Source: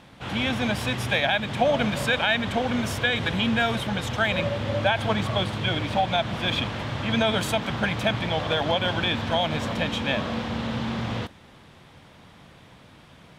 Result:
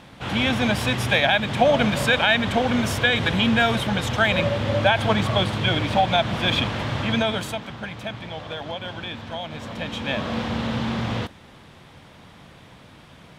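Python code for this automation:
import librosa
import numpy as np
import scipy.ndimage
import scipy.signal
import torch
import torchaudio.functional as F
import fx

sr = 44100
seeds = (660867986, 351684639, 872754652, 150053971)

y = fx.gain(x, sr, db=fx.line((6.99, 4.0), (7.75, -8.0), (9.51, -8.0), (10.41, 3.0)))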